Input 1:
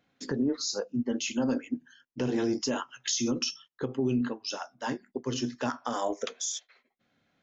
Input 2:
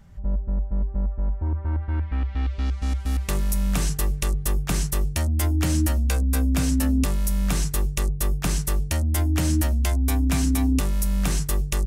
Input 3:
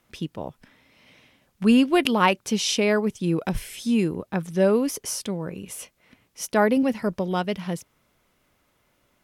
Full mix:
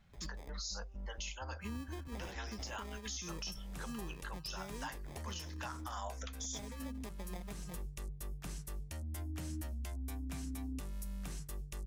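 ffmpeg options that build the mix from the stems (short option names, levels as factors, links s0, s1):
-filter_complex "[0:a]highpass=f=780:w=0.5412,highpass=f=780:w=1.3066,alimiter=level_in=1.41:limit=0.0631:level=0:latency=1:release=36,volume=0.708,volume=1[s0];[1:a]alimiter=limit=0.119:level=0:latency=1:release=468,volume=0.15[s1];[2:a]acrusher=samples=31:mix=1:aa=0.000001,acrossover=split=190[s2][s3];[s3]acompressor=threshold=0.0891:ratio=6[s4];[s2][s4]amix=inputs=2:normalize=0,volume=0.106[s5];[s0][s1][s5]amix=inputs=3:normalize=0,alimiter=level_in=2.51:limit=0.0631:level=0:latency=1:release=478,volume=0.398"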